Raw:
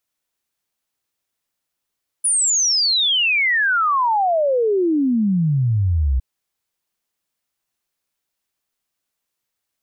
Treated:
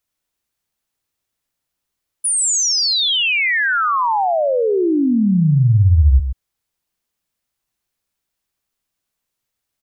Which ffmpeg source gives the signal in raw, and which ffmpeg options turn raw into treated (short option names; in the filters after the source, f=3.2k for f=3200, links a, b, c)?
-f lavfi -i "aevalsrc='0.188*clip(min(t,3.96-t)/0.01,0,1)*sin(2*PI*10000*3.96/log(61/10000)*(exp(log(61/10000)*t/3.96)-1))':d=3.96:s=44100"
-filter_complex "[0:a]lowshelf=f=140:g=8.5,asplit=2[a][b];[b]aecho=0:1:128:0.335[c];[a][c]amix=inputs=2:normalize=0"